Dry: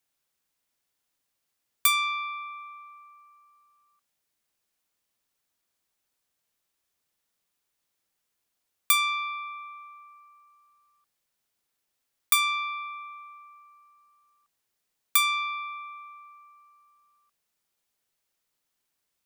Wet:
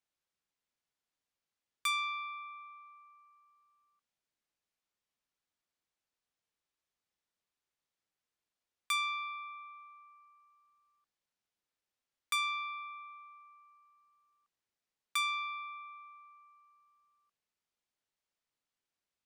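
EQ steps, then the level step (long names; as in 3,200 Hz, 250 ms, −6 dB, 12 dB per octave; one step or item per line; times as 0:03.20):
high-frequency loss of the air 59 metres
−7.5 dB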